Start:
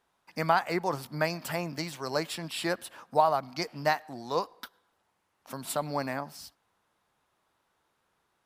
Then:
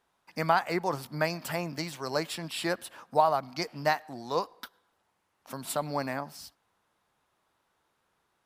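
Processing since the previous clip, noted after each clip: no audible change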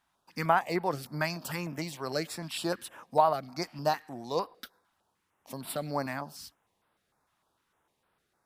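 step-sequenced notch 6.6 Hz 450–6500 Hz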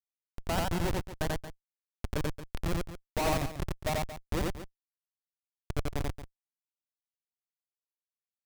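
Schmitt trigger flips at -25.5 dBFS; loudspeakers at several distances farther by 30 m -1 dB, 78 m -12 dB; trim +5 dB

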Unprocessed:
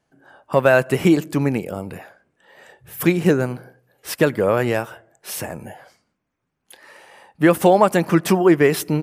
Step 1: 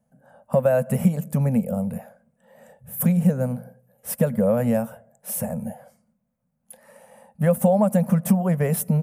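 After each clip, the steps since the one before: FFT filter 110 Hz 0 dB, 230 Hz +11 dB, 320 Hz -29 dB, 520 Hz +4 dB, 1.1 kHz -9 dB, 4.4 kHz -16 dB, 10 kHz +3 dB; compression 2.5:1, threshold -17 dBFS, peak gain reduction 8 dB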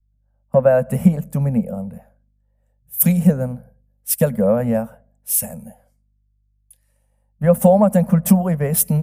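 hum 50 Hz, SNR 25 dB; three bands expanded up and down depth 100%; trim +2.5 dB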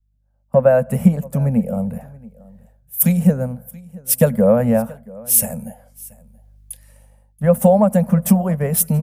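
level rider gain up to 16.5 dB; delay 679 ms -22.5 dB; trim -1 dB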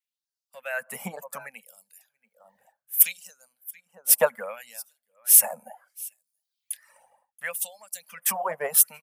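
reverb removal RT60 0.94 s; LFO high-pass sine 0.67 Hz 800–5000 Hz

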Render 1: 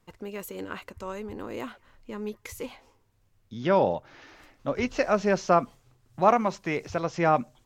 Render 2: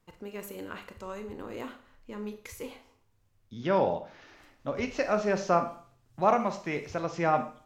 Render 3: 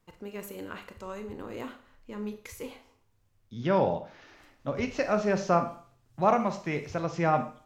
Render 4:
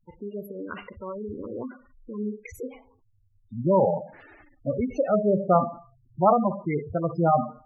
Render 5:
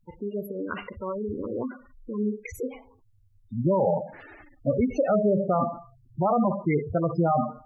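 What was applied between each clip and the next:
Schroeder reverb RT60 0.47 s, combs from 27 ms, DRR 7.5 dB; trim -4 dB
dynamic bell 130 Hz, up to +6 dB, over -47 dBFS, Q 1.1
spectral gate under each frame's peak -10 dB strong; trim +5.5 dB
peak limiter -18 dBFS, peak gain reduction 11.5 dB; trim +3.5 dB

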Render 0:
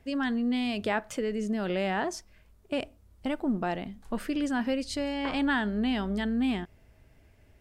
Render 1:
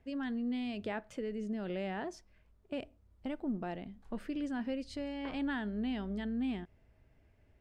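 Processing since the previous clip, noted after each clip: low-pass 2.6 kHz 6 dB/octave; dynamic bell 1.1 kHz, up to -5 dB, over -44 dBFS, Q 1; trim -7 dB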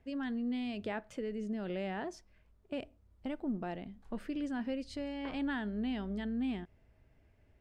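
no audible change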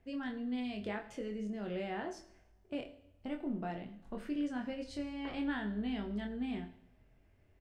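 doubling 24 ms -4.5 dB; two-slope reverb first 0.64 s, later 1.6 s, from -18 dB, DRR 8.5 dB; trim -2.5 dB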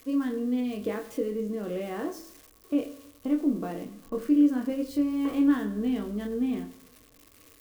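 zero-crossing glitches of -40.5 dBFS; small resonant body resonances 300/460/1100 Hz, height 16 dB, ringing for 45 ms

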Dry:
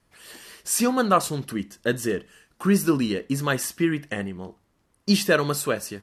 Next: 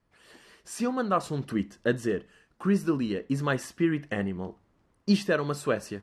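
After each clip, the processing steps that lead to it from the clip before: low-pass 9.1 kHz 12 dB/octave; treble shelf 2.8 kHz -9.5 dB; gain riding within 5 dB 0.5 s; trim -3.5 dB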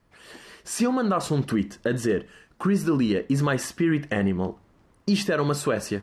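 peak limiter -22.5 dBFS, peak gain reduction 11.5 dB; trim +8.5 dB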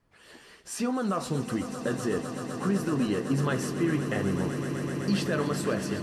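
flange 1.2 Hz, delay 6.7 ms, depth 6.8 ms, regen -56%; echo with a slow build-up 127 ms, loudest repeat 8, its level -13.5 dB; trim -1.5 dB

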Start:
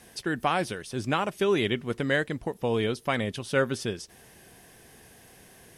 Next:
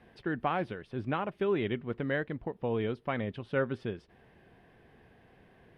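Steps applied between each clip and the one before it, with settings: in parallel at -2 dB: gain riding 2 s; on the sum: distance through air 450 m; trim -9 dB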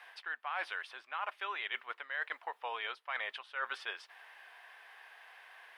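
high-pass 930 Hz 24 dB/octave; reverse; compression 12:1, threshold -46 dBFS, peak gain reduction 17 dB; reverse; trim +11.5 dB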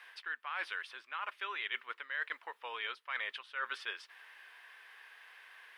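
peaking EQ 720 Hz -11.5 dB 0.69 oct; trim +1 dB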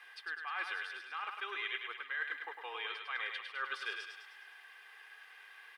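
comb 2.5 ms, depth 65%; on a send: thinning echo 103 ms, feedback 56%, high-pass 470 Hz, level -5 dB; on the sum: trim -2.5 dB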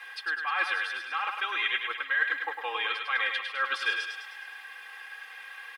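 high-pass 70 Hz; comb 3.7 ms, depth 69%; trim +9 dB

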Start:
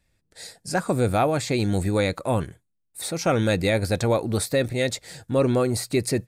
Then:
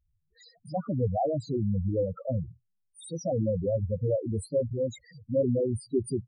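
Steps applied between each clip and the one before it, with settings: loudest bins only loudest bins 4; trim -2.5 dB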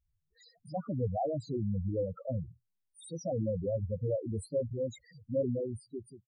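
fade out at the end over 0.90 s; trim -5 dB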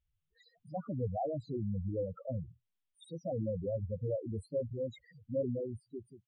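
resonant high shelf 4.2 kHz -9 dB, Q 3; trim -3 dB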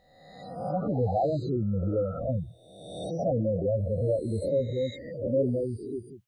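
reverse spectral sustain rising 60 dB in 1.13 s; trim +7 dB

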